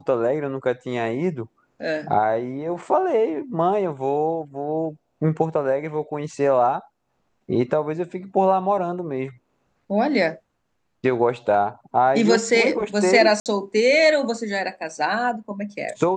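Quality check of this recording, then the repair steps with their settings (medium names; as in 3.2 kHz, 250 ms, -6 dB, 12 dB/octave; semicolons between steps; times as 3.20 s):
13.40–13.46 s: dropout 58 ms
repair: interpolate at 13.40 s, 58 ms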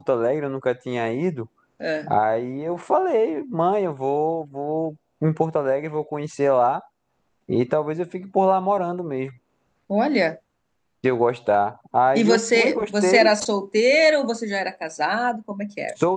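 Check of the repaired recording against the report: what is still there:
nothing left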